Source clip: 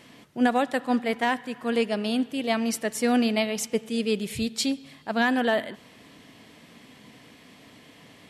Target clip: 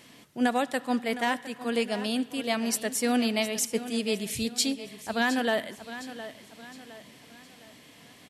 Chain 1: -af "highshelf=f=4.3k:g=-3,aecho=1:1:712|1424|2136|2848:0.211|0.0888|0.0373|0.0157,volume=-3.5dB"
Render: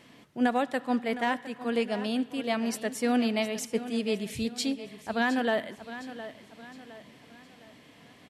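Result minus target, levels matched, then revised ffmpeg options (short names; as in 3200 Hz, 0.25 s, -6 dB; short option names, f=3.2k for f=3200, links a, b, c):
8000 Hz band -7.5 dB
-af "highshelf=f=4.3k:g=8.5,aecho=1:1:712|1424|2136|2848:0.211|0.0888|0.0373|0.0157,volume=-3.5dB"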